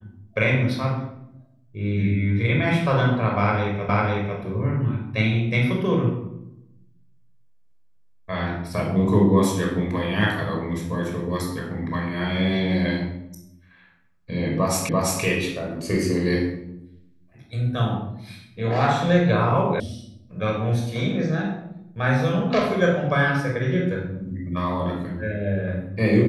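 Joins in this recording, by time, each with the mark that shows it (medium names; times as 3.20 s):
3.89 s: repeat of the last 0.5 s
14.89 s: repeat of the last 0.34 s
19.80 s: sound stops dead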